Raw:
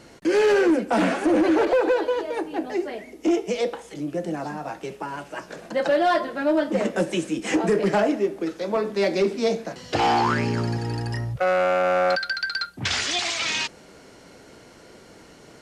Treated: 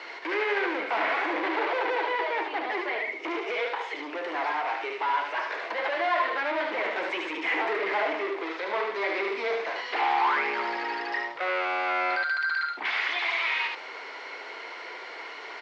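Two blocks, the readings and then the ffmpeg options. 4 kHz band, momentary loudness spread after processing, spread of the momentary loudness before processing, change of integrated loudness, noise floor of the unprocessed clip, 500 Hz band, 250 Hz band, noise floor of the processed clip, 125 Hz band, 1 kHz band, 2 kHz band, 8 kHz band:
-5.5 dB, 11 LU, 11 LU, -4.5 dB, -49 dBFS, -9.0 dB, -14.0 dB, -41 dBFS, under -35 dB, -1.0 dB, +2.0 dB, under -20 dB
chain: -filter_complex "[0:a]asplit=2[a][b];[b]highpass=f=720:p=1,volume=25dB,asoftclip=type=tanh:threshold=-14dB[c];[a][c]amix=inputs=2:normalize=0,lowpass=f=1.1k:p=1,volume=-6dB,crystalizer=i=5:c=0,highpass=f=390:w=0.5412,highpass=f=390:w=1.3066,equalizer=f=550:t=q:w=4:g=-6,equalizer=f=1k:t=q:w=4:g=6,equalizer=f=2.1k:t=q:w=4:g=9,lowpass=f=4.2k:w=0.5412,lowpass=f=4.2k:w=1.3066,aecho=1:1:74:0.562,acrossover=split=2900[d][e];[e]acompressor=threshold=-35dB:ratio=4:attack=1:release=60[f];[d][f]amix=inputs=2:normalize=0,volume=-8.5dB"

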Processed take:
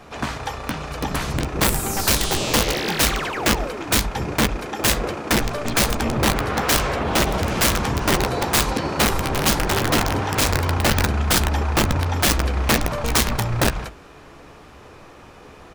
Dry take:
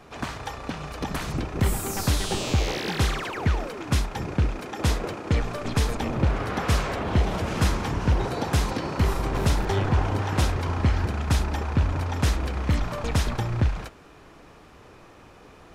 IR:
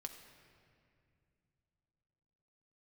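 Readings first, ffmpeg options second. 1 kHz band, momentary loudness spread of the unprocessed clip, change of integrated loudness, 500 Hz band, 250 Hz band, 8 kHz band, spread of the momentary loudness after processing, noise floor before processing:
+7.0 dB, 6 LU, +5.5 dB, +6.5 dB, +5.0 dB, +13.0 dB, 6 LU, -50 dBFS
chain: -filter_complex "[0:a]bandreject=f=50:t=h:w=6,bandreject=f=100:t=h:w=6,bandreject=f=150:t=h:w=6,bandreject=f=200:t=h:w=6,bandreject=f=250:t=h:w=6,bandreject=f=300:t=h:w=6,bandreject=f=350:t=h:w=6,bandreject=f=400:t=h:w=6,aeval=exprs='(mod(7.94*val(0)+1,2)-1)/7.94':c=same,asplit=2[a][b];[b]adelay=14,volume=-12dB[c];[a][c]amix=inputs=2:normalize=0,volume=5.5dB"

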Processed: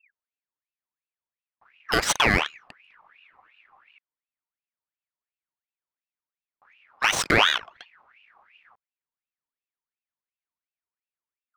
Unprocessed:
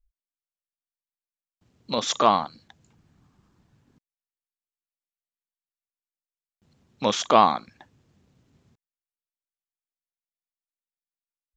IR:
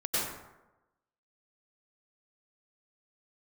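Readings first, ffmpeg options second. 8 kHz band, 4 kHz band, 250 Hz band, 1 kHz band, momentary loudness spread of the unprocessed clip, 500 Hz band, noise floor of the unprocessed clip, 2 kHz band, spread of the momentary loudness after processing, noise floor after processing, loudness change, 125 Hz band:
+5.0 dB, +5.0 dB, -1.5 dB, -6.0 dB, 12 LU, -5.0 dB, under -85 dBFS, +15.0 dB, 8 LU, under -85 dBFS, +0.5 dB, +5.5 dB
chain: -af "adynamicsmooth=sensitivity=8:basefreq=1.4k,alimiter=limit=-13dB:level=0:latency=1:release=164,aeval=exprs='val(0)*sin(2*PI*1800*n/s+1800*0.5/2.8*sin(2*PI*2.8*n/s))':c=same,volume=8dB"

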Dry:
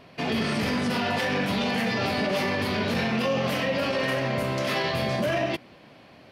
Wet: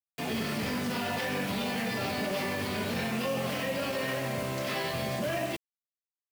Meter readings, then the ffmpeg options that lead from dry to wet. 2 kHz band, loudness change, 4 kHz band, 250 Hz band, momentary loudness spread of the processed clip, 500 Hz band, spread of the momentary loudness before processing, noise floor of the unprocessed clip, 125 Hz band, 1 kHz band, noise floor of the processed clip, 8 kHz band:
-6.0 dB, -5.5 dB, -5.5 dB, -6.0 dB, 2 LU, -6.0 dB, 2 LU, -51 dBFS, -6.0 dB, -6.0 dB, under -85 dBFS, +0.5 dB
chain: -af "acrusher=bits=5:mix=0:aa=0.000001,volume=-6dB"

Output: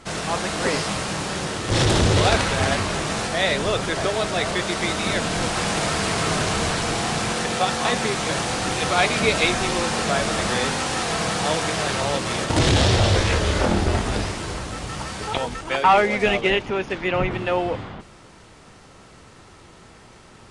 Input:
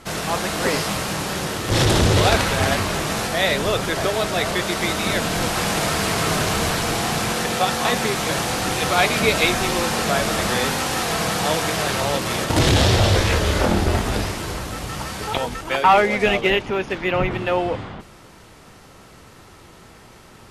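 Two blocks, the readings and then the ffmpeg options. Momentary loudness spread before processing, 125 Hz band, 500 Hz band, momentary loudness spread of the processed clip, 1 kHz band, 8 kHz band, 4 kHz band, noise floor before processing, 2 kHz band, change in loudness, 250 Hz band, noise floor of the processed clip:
9 LU, -1.5 dB, -1.5 dB, 9 LU, -1.5 dB, -2.0 dB, -1.5 dB, -46 dBFS, -1.5 dB, -1.5 dB, -1.5 dB, -47 dBFS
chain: -af "aresample=22050,aresample=44100,volume=-1.5dB"

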